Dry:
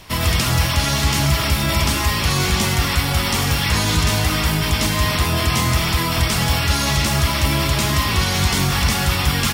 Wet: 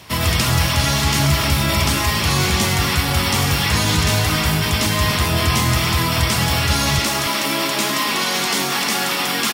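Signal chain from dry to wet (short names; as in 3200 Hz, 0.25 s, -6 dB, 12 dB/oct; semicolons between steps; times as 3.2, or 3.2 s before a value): HPF 65 Hz 24 dB/oct, from 6.99 s 220 Hz; echo 0.282 s -11.5 dB; gain +1 dB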